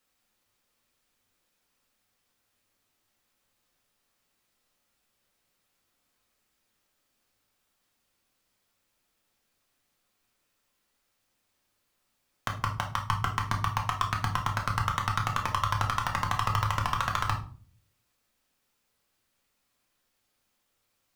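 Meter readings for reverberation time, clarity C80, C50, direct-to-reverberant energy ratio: 0.45 s, 15.0 dB, 9.0 dB, 1.0 dB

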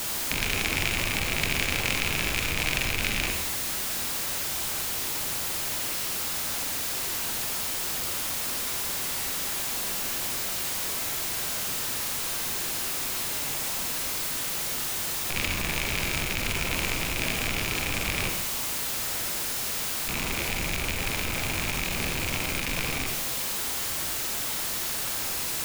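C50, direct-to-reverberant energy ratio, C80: 4.5 dB, 3.0 dB, 7.5 dB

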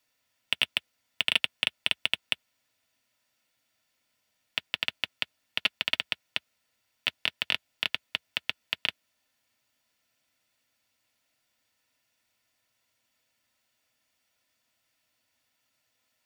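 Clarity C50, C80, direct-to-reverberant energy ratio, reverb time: 60.0 dB, 60.0 dB, 8.5 dB, not exponential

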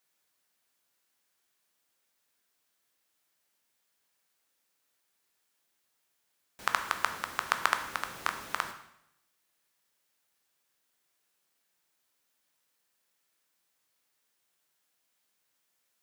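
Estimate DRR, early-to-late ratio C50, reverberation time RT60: 6.5 dB, 10.0 dB, 0.80 s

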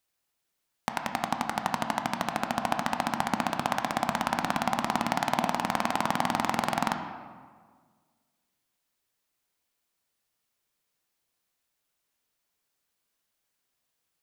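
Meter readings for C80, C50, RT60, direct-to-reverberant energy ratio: 8.5 dB, 7.0 dB, 1.7 s, 5.0 dB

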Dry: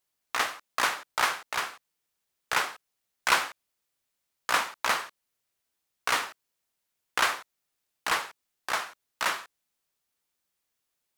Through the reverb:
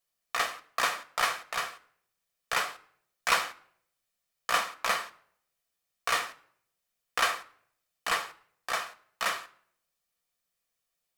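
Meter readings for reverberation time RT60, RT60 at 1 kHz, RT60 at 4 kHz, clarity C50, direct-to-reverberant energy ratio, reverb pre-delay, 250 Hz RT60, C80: 0.65 s, 0.60 s, 0.50 s, 20.0 dB, 8.0 dB, 4 ms, 0.65 s, 23.0 dB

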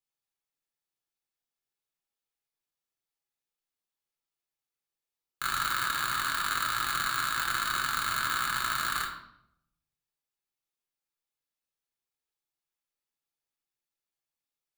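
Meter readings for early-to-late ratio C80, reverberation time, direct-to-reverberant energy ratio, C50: 9.5 dB, 0.75 s, -1.0 dB, 6.0 dB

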